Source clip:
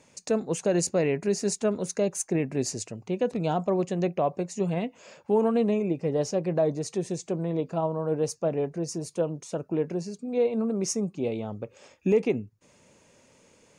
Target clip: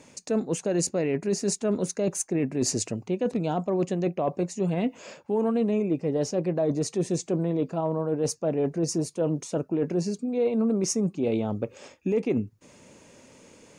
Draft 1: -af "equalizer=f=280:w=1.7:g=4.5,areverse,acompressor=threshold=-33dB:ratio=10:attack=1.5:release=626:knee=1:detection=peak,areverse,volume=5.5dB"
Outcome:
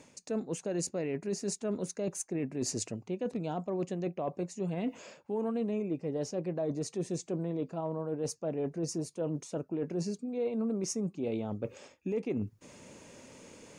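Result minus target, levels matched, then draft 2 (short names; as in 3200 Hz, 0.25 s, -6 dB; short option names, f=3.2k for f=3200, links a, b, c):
compressor: peak gain reduction +8 dB
-af "equalizer=f=280:w=1.7:g=4.5,areverse,acompressor=threshold=-24dB:ratio=10:attack=1.5:release=626:knee=1:detection=peak,areverse,volume=5.5dB"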